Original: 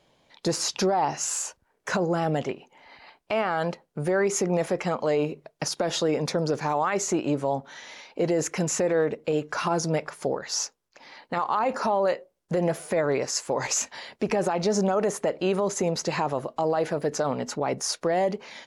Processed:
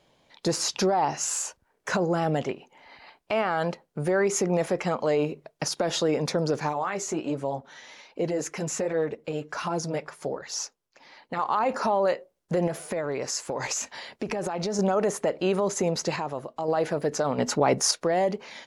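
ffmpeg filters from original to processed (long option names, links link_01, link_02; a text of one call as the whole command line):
ffmpeg -i in.wav -filter_complex "[0:a]asettb=1/sr,asplit=3[link_01][link_02][link_03];[link_01]atrim=end=6.694[link_04];[link_02]atrim=start=6.69:end=11.39,asetpts=PTS-STARTPTS,afade=type=in:duration=0.004:curve=qsin,afade=type=out:start_time=4.696:duration=0.004:curve=qsin,flanger=delay=0.3:depth=7.7:regen=-40:speed=1.3:shape=sinusoidal[link_05];[link_03]atrim=start=11.386[link_06];[link_04][link_05]acrossfade=duration=0.004:curve1=hsin:curve2=qsin[link_07];[link_07][link_06]acrossfade=duration=0.004:curve1=qsin:curve2=hsin,asettb=1/sr,asplit=3[link_08][link_09][link_10];[link_08]atrim=end=12.674[link_11];[link_09]atrim=start=12.67:end=14.79,asetpts=PTS-STARTPTS,afade=type=in:duration=0.004:curve=qsin,afade=type=out:start_time=2.116:duration=0.004:curve=qsin,acompressor=threshold=-25dB:ratio=6:attack=3.2:release=140:knee=1:detection=peak[link_12];[link_10]atrim=start=14.786[link_13];[link_11][link_12]acrossfade=duration=0.004:curve1=hsin:curve2=qsin[link_14];[link_14][link_13]acrossfade=duration=0.004:curve1=qsin:curve2=hsin,asplit=5[link_15][link_16][link_17][link_18][link_19];[link_15]atrim=end=16.162[link_20];[link_16]atrim=start=16.158:end=16.682,asetpts=PTS-STARTPTS,volume=-5dB[link_21];[link_17]atrim=start=16.678:end=17.382[link_22];[link_18]atrim=start=17.378:end=17.912,asetpts=PTS-STARTPTS,volume=5.5dB[link_23];[link_19]atrim=start=17.908[link_24];[link_20][link_21]acrossfade=duration=0.004:curve1=hsin:curve2=hsin[link_25];[link_25][link_22]acrossfade=duration=0.004:curve1=hsin:curve2=hsin[link_26];[link_26][link_23]acrossfade=duration=0.004:curve1=hsin:curve2=hsin[link_27];[link_27][link_24]acrossfade=duration=0.004:curve1=hsin:curve2=hsin" out.wav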